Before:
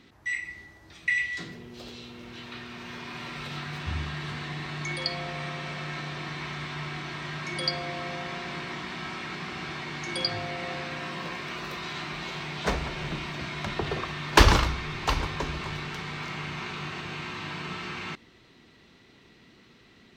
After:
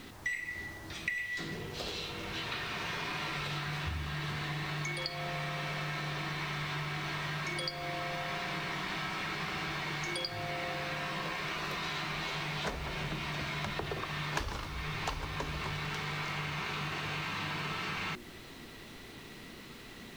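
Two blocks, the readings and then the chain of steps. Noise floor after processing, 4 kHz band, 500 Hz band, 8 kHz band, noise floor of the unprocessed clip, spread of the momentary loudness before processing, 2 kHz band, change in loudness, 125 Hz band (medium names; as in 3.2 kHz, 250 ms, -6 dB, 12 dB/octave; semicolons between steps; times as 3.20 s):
-49 dBFS, -4.5 dB, -6.0 dB, -5.5 dB, -57 dBFS, 11 LU, -4.0 dB, -5.0 dB, -5.0 dB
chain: hum notches 60/120/180/240/300/360 Hz; compression 16:1, threshold -40 dBFS, peak gain reduction 29.5 dB; added noise pink -63 dBFS; trim +7 dB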